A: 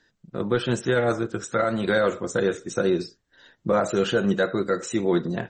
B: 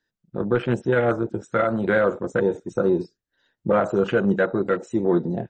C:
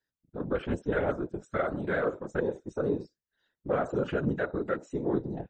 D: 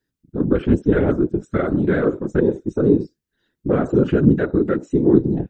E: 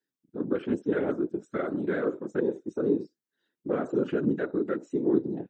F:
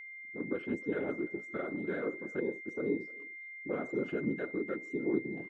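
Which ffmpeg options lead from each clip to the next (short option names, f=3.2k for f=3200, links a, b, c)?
-af "afwtdn=0.0316,volume=2dB"
-af "afftfilt=real='hypot(re,im)*cos(2*PI*random(0))':imag='hypot(re,im)*sin(2*PI*random(1))':win_size=512:overlap=0.75,volume=-3dB"
-af "lowshelf=f=460:t=q:w=1.5:g=9,volume=5.5dB"
-af "highpass=250,volume=-8.5dB"
-filter_complex "[0:a]aeval=exprs='val(0)+0.0141*sin(2*PI*2100*n/s)':c=same,asplit=2[a][b];[b]adelay=300,highpass=300,lowpass=3.4k,asoftclip=type=hard:threshold=-21.5dB,volume=-21dB[c];[a][c]amix=inputs=2:normalize=0,volume=-7.5dB"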